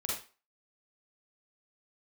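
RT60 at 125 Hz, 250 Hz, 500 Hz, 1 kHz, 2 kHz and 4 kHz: 0.25 s, 0.30 s, 0.35 s, 0.35 s, 0.35 s, 0.30 s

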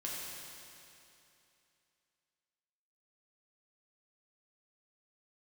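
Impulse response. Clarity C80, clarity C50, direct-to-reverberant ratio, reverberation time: -0.5 dB, -2.0 dB, -5.5 dB, 2.8 s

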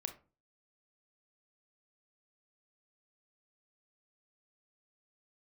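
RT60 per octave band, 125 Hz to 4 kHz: 0.50 s, 0.45 s, 0.35 s, 0.35 s, 0.25 s, 0.20 s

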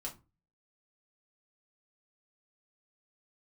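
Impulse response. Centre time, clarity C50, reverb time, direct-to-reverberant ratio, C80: 15 ms, 13.5 dB, no single decay rate, -3.0 dB, 21.0 dB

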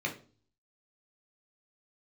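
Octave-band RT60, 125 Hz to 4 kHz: 0.70 s, 0.55 s, 0.45 s, 0.35 s, 0.30 s, 0.35 s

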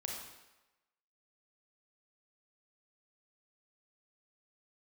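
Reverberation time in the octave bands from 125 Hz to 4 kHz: 0.75 s, 0.90 s, 1.0 s, 1.1 s, 1.0 s, 0.90 s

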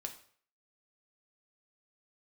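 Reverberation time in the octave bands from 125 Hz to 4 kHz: 0.55 s, 0.45 s, 0.55 s, 0.50 s, 0.50 s, 0.45 s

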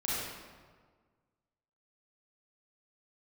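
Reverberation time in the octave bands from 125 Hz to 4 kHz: 1.8 s, 1.7 s, 1.6 s, 1.6 s, 1.3 s, 1.0 s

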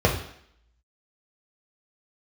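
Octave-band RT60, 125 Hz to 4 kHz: 0.45 s, 0.65 s, 0.65 s, 0.70 s, 0.70 s, 0.70 s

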